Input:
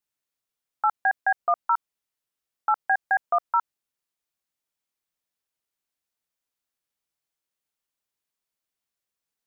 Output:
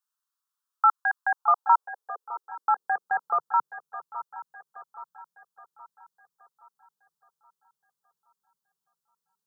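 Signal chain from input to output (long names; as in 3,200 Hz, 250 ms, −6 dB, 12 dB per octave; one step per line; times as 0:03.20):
dynamic equaliser 420 Hz, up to +6 dB, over −39 dBFS, Q 1.1
phaser with its sweep stopped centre 430 Hz, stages 8
feedback echo with a long and a short gap by turns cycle 822 ms, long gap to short 3 to 1, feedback 46%, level −14 dB
high-pass filter sweep 1,200 Hz → 140 Hz, 0:01.17–0:03.35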